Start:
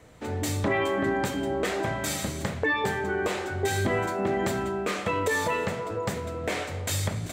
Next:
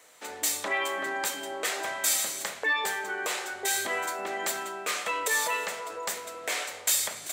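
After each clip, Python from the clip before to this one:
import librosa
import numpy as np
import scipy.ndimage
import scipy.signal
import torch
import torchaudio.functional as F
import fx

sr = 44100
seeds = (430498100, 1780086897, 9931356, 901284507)

y = scipy.signal.sosfilt(scipy.signal.bessel(2, 840.0, 'highpass', norm='mag', fs=sr, output='sos'), x)
y = fx.high_shelf(y, sr, hz=5300.0, db=11.5)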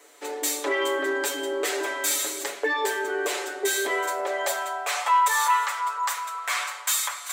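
y = x + 0.77 * np.pad(x, (int(7.0 * sr / 1000.0), 0))[:len(x)]
y = 10.0 ** (-16.5 / 20.0) * np.tanh(y / 10.0 ** (-16.5 / 20.0))
y = fx.filter_sweep_highpass(y, sr, from_hz=350.0, to_hz=1100.0, start_s=3.68, end_s=5.45, q=4.0)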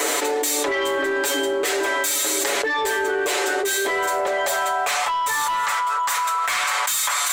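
y = 10.0 ** (-20.0 / 20.0) * np.tanh(x / 10.0 ** (-20.0 / 20.0))
y = fx.env_flatten(y, sr, amount_pct=100)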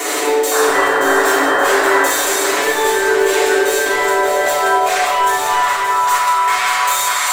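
y = fx.spec_paint(x, sr, seeds[0], shape='noise', start_s=0.51, length_s=1.51, low_hz=480.0, high_hz=1900.0, level_db=-22.0)
y = fx.echo_feedback(y, sr, ms=576, feedback_pct=53, wet_db=-7.5)
y = fx.room_shoebox(y, sr, seeds[1], volume_m3=980.0, walls='mixed', distance_m=3.3)
y = F.gain(torch.from_numpy(y), -2.0).numpy()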